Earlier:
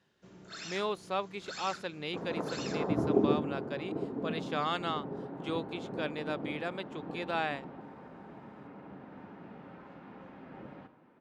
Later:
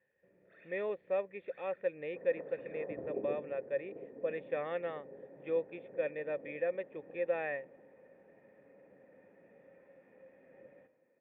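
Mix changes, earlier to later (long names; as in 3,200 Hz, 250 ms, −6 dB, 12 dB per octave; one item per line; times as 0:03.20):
speech +9.5 dB
second sound: remove low-pass filter 2,100 Hz 12 dB per octave
master: add formant resonators in series e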